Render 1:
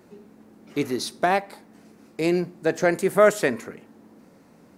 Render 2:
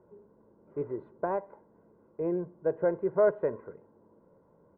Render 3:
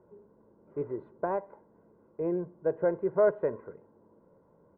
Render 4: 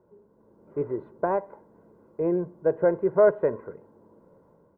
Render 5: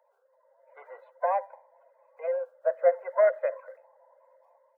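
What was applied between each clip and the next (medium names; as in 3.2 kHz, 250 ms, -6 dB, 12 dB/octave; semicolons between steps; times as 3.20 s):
inverse Chebyshev low-pass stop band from 5.1 kHz, stop band 70 dB; comb 2 ms, depth 65%; trim -8.5 dB
no audible change
level rider gain up to 7 dB; trim -1.5 dB
coarse spectral quantiser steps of 30 dB; rippled Chebyshev high-pass 510 Hz, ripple 6 dB; trim +4.5 dB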